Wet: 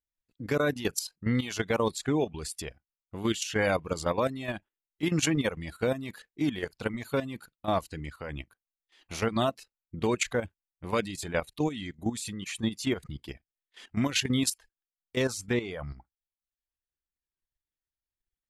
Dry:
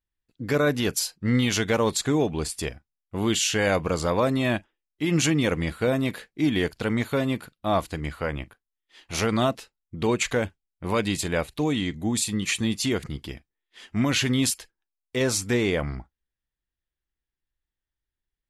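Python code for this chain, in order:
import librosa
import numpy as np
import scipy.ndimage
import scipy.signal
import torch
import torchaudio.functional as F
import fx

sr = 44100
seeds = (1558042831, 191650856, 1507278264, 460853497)

y = fx.dereverb_blind(x, sr, rt60_s=0.67)
y = fx.level_steps(y, sr, step_db=12)
y = y * librosa.db_to_amplitude(-1.0)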